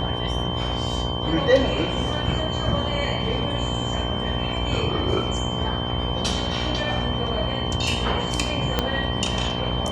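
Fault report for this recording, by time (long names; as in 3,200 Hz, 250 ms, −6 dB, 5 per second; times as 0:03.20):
mains buzz 60 Hz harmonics 19 −29 dBFS
whistle 3,100 Hz −30 dBFS
0:08.79: click −6 dBFS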